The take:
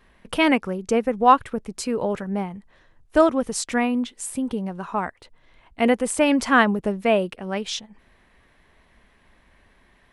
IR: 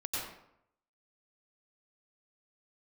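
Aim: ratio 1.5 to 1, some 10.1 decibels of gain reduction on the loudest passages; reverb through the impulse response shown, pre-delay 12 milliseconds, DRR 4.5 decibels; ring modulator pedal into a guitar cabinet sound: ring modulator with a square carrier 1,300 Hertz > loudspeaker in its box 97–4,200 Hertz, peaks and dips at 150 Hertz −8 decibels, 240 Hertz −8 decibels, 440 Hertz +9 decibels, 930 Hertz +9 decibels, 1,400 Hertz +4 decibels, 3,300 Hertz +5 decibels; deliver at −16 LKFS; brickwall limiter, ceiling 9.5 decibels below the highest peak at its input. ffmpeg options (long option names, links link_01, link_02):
-filter_complex "[0:a]acompressor=threshold=-38dB:ratio=1.5,alimiter=limit=-23dB:level=0:latency=1,asplit=2[link_01][link_02];[1:a]atrim=start_sample=2205,adelay=12[link_03];[link_02][link_03]afir=irnorm=-1:irlink=0,volume=-8dB[link_04];[link_01][link_04]amix=inputs=2:normalize=0,aeval=exprs='val(0)*sgn(sin(2*PI*1300*n/s))':channel_layout=same,highpass=97,equalizer=frequency=150:width_type=q:width=4:gain=-8,equalizer=frequency=240:width_type=q:width=4:gain=-8,equalizer=frequency=440:width_type=q:width=4:gain=9,equalizer=frequency=930:width_type=q:width=4:gain=9,equalizer=frequency=1400:width_type=q:width=4:gain=4,equalizer=frequency=3300:width_type=q:width=4:gain=5,lowpass=frequency=4200:width=0.5412,lowpass=frequency=4200:width=1.3066,volume=12.5dB"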